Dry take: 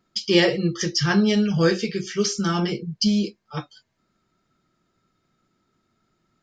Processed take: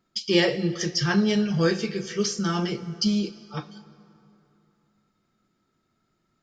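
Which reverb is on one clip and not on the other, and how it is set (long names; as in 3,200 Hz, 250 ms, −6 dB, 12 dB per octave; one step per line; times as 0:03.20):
dense smooth reverb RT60 2.9 s, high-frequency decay 0.65×, DRR 14 dB
level −3 dB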